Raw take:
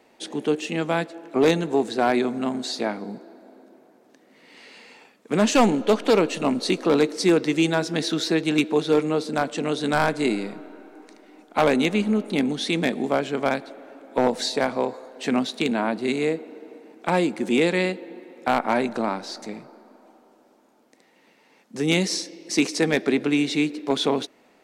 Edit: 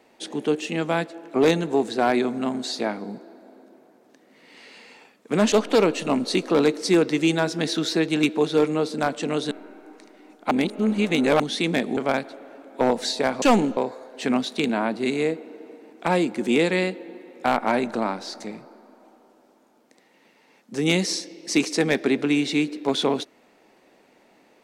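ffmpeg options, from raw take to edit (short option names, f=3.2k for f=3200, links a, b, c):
-filter_complex "[0:a]asplit=8[a][b][c][d][e][f][g][h];[a]atrim=end=5.522[i];[b]atrim=start=5.868:end=9.862[j];[c]atrim=start=10.598:end=11.602[k];[d]atrim=start=11.598:end=12.492,asetpts=PTS-STARTPTS,areverse[l];[e]atrim=start=12.488:end=13.062[m];[f]atrim=start=13.338:end=14.792[n];[g]atrim=start=5.518:end=5.872[o];[h]atrim=start=14.788[p];[i][j]acrossfade=d=0.004:c1=hsin:c2=hsin[q];[q][k]acrossfade=d=0.004:c1=hsin:c2=hsin[r];[r][l]acrossfade=d=0.004:c1=hsin:c2=hsin[s];[s][m]acrossfade=d=0.004:c1=hsin:c2=hsin[t];[t][n]acrossfade=d=0.004:c1=hsin:c2=hsin[u];[u][o]acrossfade=d=0.004:c1=hsin:c2=hsin[v];[v][p]acrossfade=d=0.004:c1=hsin:c2=hsin"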